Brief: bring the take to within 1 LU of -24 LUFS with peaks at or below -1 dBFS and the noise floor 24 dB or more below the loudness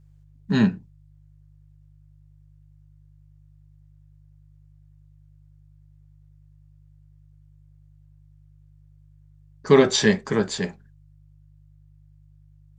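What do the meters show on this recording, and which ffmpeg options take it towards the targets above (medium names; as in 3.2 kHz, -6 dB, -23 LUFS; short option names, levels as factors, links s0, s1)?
hum 50 Hz; highest harmonic 150 Hz; hum level -50 dBFS; loudness -21.0 LUFS; peak level -3.0 dBFS; loudness target -24.0 LUFS
-> -af "bandreject=f=50:t=h:w=4,bandreject=f=100:t=h:w=4,bandreject=f=150:t=h:w=4"
-af "volume=0.708"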